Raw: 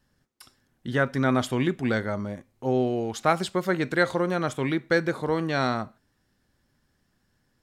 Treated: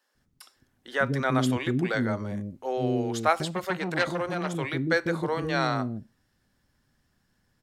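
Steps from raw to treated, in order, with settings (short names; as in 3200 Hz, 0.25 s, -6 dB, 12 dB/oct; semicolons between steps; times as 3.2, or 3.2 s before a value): bands offset in time highs, lows 0.15 s, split 390 Hz; 3.45–4.55 core saturation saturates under 1700 Hz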